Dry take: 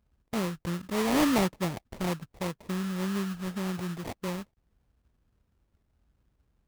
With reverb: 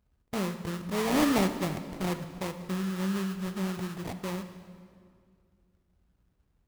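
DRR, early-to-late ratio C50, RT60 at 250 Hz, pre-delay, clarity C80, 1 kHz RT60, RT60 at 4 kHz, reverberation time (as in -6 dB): 8.0 dB, 9.5 dB, 2.6 s, 3 ms, 11.0 dB, 2.0 s, 1.6 s, 2.2 s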